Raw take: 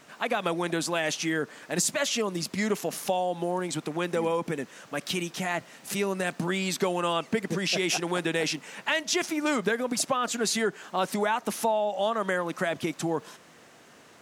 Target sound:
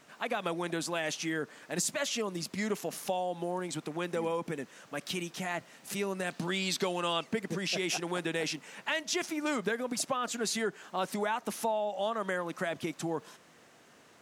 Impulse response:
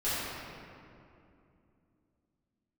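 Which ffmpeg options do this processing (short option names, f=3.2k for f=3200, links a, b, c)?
-filter_complex "[0:a]asettb=1/sr,asplit=3[a][b][c];[a]atrim=end=6.304[d];[b]atrim=start=6.3:end=7.24,asetpts=PTS-STARTPTS,afade=t=in:d=0.004:c=qsin,afade=t=out:st=0.936:d=0.004:c=qsin,equalizer=f=4k:t=o:w=1.3:g=7[e];[c]atrim=start=7.236[f];[d][e]acrossfade=d=0.004:c1=hsin:c2=qsin[g];[g][f]acrossfade=d=0.004:c1=qsin:c2=hsin,volume=-5.5dB"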